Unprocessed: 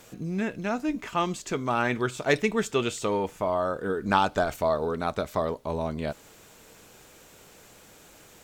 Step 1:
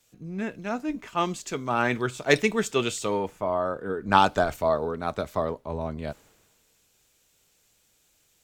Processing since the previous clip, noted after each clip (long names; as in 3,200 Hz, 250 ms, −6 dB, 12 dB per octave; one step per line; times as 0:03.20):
multiband upward and downward expander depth 70%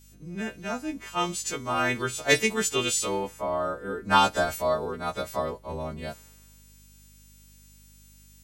every partial snapped to a pitch grid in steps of 2 semitones
mains hum 50 Hz, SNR 26 dB
level −2 dB